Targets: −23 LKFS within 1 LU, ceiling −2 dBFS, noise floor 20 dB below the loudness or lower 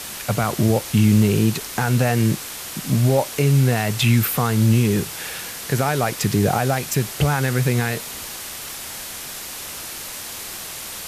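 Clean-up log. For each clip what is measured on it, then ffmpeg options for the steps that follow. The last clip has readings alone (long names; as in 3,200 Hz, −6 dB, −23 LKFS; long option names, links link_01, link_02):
background noise floor −33 dBFS; target noise floor −41 dBFS; integrated loudness −21.0 LKFS; sample peak −6.5 dBFS; target loudness −23.0 LKFS
→ -af "afftdn=noise_reduction=8:noise_floor=-33"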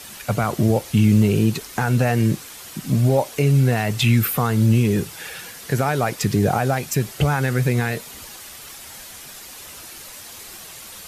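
background noise floor −39 dBFS; target noise floor −40 dBFS
→ -af "afftdn=noise_reduction=6:noise_floor=-39"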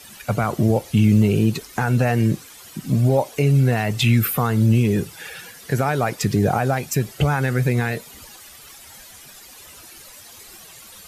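background noise floor −44 dBFS; integrated loudness −20.0 LKFS; sample peak −7.0 dBFS; target loudness −23.0 LKFS
→ -af "volume=-3dB"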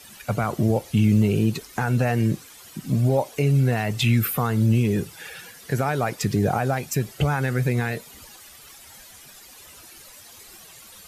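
integrated loudness −23.0 LKFS; sample peak −10.0 dBFS; background noise floor −47 dBFS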